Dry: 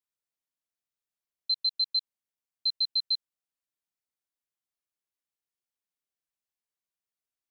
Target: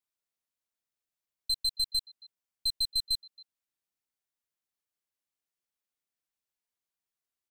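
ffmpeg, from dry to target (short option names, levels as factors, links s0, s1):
-filter_complex "[0:a]asplit=2[s0][s1];[s1]adelay=274.1,volume=0.0794,highshelf=f=4000:g=-6.17[s2];[s0][s2]amix=inputs=2:normalize=0,aeval=exprs='clip(val(0),-1,0.0335)':c=same"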